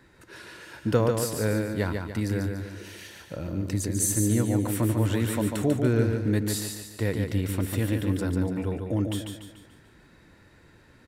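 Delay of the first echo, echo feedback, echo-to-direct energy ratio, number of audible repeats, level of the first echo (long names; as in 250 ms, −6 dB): 145 ms, 45%, −4.0 dB, 5, −5.0 dB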